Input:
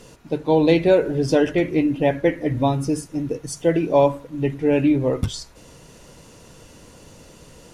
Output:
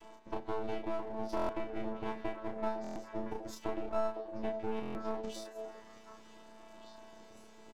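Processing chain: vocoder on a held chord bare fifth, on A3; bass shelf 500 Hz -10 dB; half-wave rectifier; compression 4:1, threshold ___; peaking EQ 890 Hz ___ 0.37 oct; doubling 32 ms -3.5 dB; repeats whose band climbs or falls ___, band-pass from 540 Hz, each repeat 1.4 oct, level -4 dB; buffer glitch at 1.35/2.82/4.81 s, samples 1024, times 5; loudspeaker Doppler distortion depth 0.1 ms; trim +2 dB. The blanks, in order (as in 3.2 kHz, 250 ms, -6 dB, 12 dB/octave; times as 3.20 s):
-38 dBFS, +5 dB, 506 ms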